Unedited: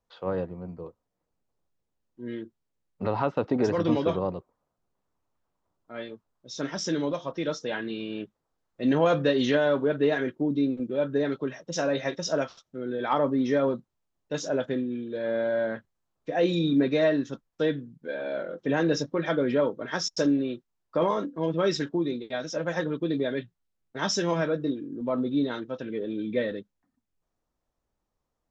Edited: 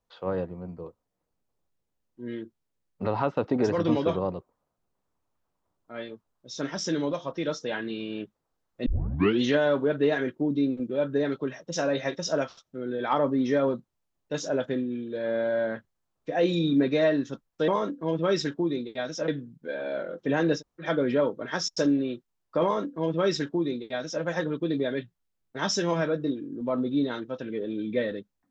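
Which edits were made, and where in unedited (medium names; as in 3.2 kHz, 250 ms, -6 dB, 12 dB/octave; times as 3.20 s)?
8.86 s: tape start 0.57 s
18.98–19.23 s: room tone, crossfade 0.10 s
21.03–22.63 s: copy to 17.68 s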